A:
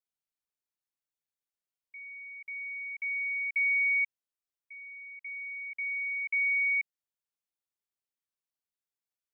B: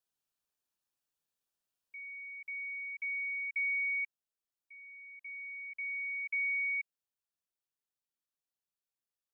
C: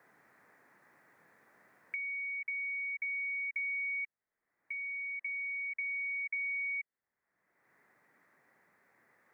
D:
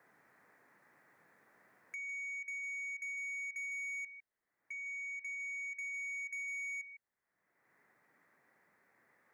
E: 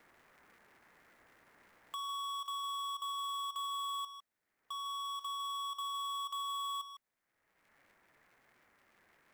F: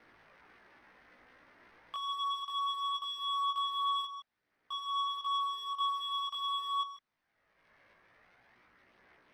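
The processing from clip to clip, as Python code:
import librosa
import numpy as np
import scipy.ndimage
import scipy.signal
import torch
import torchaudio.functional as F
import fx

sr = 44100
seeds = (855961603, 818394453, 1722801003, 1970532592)

y1 = fx.rider(x, sr, range_db=4, speed_s=2.0)
y1 = fx.notch(y1, sr, hz=2100.0, q=5.5)
y2 = fx.curve_eq(y1, sr, hz=(1400.0, 2000.0, 2900.0), db=(0, 7, -24))
y2 = fx.band_squash(y2, sr, depth_pct=100)
y2 = F.gain(torch.from_numpy(y2), 2.5).numpy()
y3 = y2 + 10.0 ** (-13.5 / 20.0) * np.pad(y2, (int(154 * sr / 1000.0), 0))[:len(y2)]
y3 = 10.0 ** (-36.0 / 20.0) * np.tanh(y3 / 10.0 ** (-36.0 / 20.0))
y3 = F.gain(torch.from_numpy(y3), -2.5).numpy()
y4 = fx.cycle_switch(y3, sr, every=2, mode='inverted')
y4 = F.gain(torch.from_numpy(y4), 2.5).numpy()
y5 = scipy.signal.savgol_filter(y4, 15, 4, mode='constant')
y5 = fx.chorus_voices(y5, sr, voices=2, hz=0.22, base_ms=18, depth_ms=2.0, mix_pct=50)
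y5 = F.gain(torch.from_numpy(y5), 7.0).numpy()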